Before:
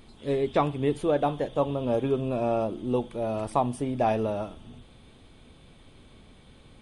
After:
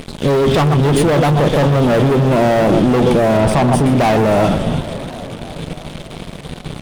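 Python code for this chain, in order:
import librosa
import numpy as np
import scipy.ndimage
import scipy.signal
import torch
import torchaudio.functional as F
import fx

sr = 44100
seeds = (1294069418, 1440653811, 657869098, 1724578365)

p1 = fx.peak_eq(x, sr, hz=160.0, db=13.5, octaves=0.37)
p2 = p1 + fx.echo_single(p1, sr, ms=128, db=-13.5, dry=0)
p3 = fx.leveller(p2, sr, passes=5)
p4 = fx.high_shelf(p3, sr, hz=6300.0, db=-10.0, at=(3.37, 3.86))
p5 = fx.over_compress(p4, sr, threshold_db=-17.0, ratio=-0.5)
p6 = p4 + F.gain(torch.from_numpy(p5), 1.5).numpy()
p7 = fx.echo_warbled(p6, sr, ms=283, feedback_pct=72, rate_hz=2.8, cents=183, wet_db=-14.5)
y = F.gain(torch.from_numpy(p7), -3.0).numpy()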